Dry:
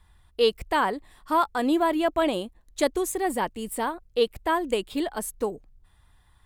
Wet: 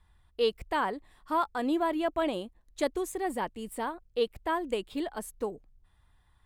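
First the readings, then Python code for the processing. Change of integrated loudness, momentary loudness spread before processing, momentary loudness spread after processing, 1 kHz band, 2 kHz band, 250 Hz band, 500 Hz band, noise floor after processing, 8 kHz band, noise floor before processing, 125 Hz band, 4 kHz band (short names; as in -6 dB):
-5.5 dB, 9 LU, 9 LU, -5.5 dB, -6.0 dB, -5.5 dB, -5.5 dB, -66 dBFS, -9.5 dB, -61 dBFS, -5.5 dB, -7.0 dB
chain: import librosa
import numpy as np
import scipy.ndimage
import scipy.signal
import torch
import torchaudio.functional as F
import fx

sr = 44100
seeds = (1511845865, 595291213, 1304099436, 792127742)

y = fx.high_shelf(x, sr, hz=5100.0, db=-5.5)
y = y * 10.0 ** (-5.5 / 20.0)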